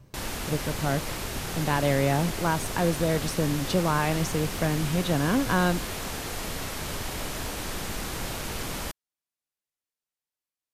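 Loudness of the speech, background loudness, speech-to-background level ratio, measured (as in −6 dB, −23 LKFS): −27.0 LKFS, −33.0 LKFS, 6.0 dB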